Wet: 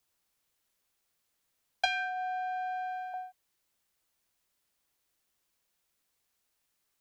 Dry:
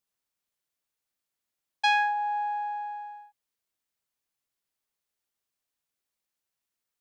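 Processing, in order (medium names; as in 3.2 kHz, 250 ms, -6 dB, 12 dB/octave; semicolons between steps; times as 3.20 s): compression 12:1, threshold -33 dBFS, peak gain reduction 14.5 dB; 1.85–3.14 s: high-pass 1.2 kHz 12 dB/octave; frequency shift -92 Hz; trim +7.5 dB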